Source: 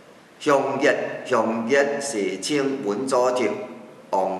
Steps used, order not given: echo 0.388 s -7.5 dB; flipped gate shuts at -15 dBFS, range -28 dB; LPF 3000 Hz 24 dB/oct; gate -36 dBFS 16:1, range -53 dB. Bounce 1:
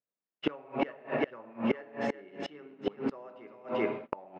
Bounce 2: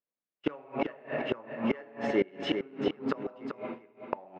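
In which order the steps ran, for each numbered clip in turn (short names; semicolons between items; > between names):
echo > gate > flipped gate > LPF; LPF > gate > flipped gate > echo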